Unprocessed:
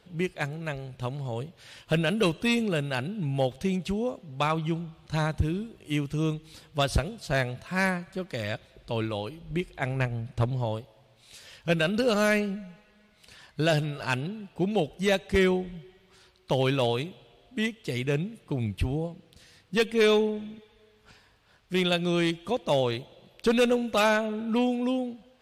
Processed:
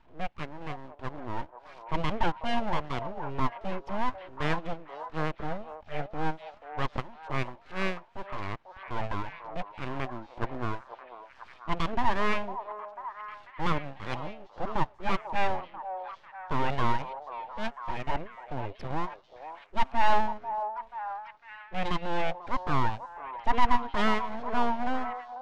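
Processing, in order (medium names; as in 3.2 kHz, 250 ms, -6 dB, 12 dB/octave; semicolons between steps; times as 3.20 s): transient shaper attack -7 dB, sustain -11 dB; cabinet simulation 190–2400 Hz, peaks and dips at 320 Hz +3 dB, 470 Hz +9 dB, 1.1 kHz +4 dB, 1.6 kHz -4 dB; full-wave rectifier; distance through air 62 m; on a send: repeats whose band climbs or falls 493 ms, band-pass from 700 Hz, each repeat 0.7 oct, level -6.5 dB; on the sum: warped record 33 1/3 rpm, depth 100 cents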